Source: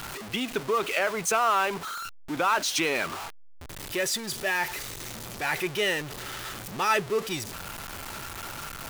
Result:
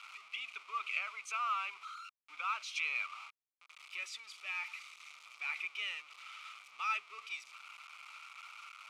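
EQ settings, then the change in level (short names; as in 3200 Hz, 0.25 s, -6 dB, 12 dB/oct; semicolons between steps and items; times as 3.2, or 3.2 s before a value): double band-pass 1700 Hz, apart 0.9 oct; air absorption 59 m; differentiator; +8.0 dB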